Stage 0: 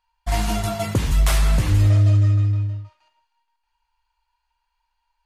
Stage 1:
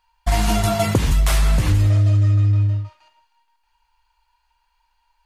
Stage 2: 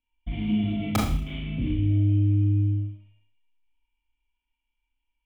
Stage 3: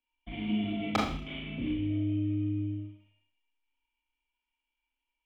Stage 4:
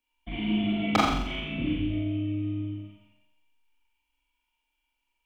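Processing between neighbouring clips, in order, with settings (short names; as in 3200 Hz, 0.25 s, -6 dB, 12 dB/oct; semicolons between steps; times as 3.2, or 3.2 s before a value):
compressor, threshold -21 dBFS, peak gain reduction 8.5 dB; gain +7.5 dB
vocal tract filter i; wrapped overs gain 17.5 dB; Schroeder reverb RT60 0.51 s, combs from 26 ms, DRR -1.5 dB
three-band isolator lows -14 dB, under 240 Hz, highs -21 dB, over 5400 Hz
flutter echo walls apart 7.5 m, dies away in 0.71 s; gain +4.5 dB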